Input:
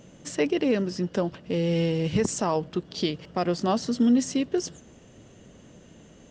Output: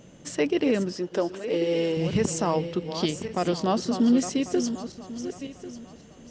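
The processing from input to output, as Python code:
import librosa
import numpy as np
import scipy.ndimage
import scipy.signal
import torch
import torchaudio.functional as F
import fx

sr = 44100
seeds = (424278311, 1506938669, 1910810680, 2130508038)

y = fx.reverse_delay_fb(x, sr, ms=547, feedback_pct=47, wet_db=-9.5)
y = fx.low_shelf_res(y, sr, hz=260.0, db=-8.5, q=1.5, at=(0.92, 1.97))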